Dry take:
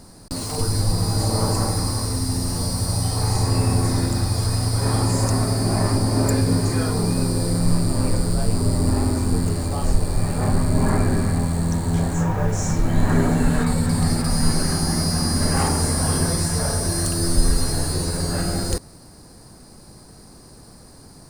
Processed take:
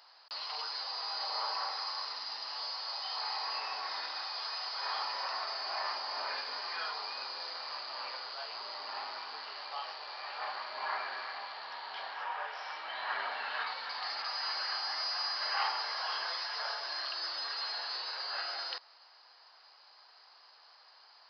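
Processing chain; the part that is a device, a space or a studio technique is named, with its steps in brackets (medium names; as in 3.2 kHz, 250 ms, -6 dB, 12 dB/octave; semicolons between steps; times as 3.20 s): musical greeting card (resampled via 11.025 kHz; high-pass 860 Hz 24 dB/octave; peaking EQ 3 kHz +8 dB 0.28 oct); trim -5 dB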